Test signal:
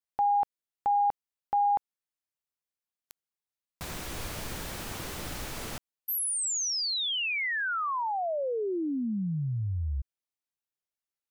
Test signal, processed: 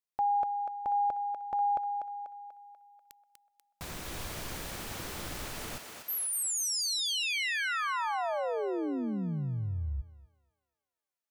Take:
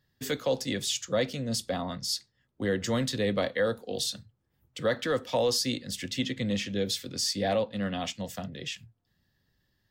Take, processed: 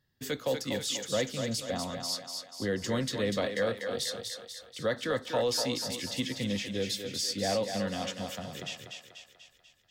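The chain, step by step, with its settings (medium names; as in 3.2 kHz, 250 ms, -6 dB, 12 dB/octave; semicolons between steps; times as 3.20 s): thinning echo 244 ms, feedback 55%, high-pass 380 Hz, level -5 dB; trim -3 dB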